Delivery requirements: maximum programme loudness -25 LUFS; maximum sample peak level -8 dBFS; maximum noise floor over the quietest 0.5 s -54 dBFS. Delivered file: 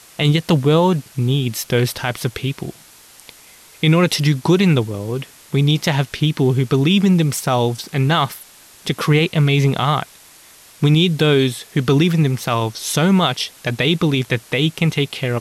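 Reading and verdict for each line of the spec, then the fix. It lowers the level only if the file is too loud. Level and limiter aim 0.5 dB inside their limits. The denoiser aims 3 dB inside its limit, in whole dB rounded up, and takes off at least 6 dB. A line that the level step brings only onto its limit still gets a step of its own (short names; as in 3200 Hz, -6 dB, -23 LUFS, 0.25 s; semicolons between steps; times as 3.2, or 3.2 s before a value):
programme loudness -17.5 LUFS: fail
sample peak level -5.5 dBFS: fail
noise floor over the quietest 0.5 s -45 dBFS: fail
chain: denoiser 6 dB, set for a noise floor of -45 dBFS; gain -8 dB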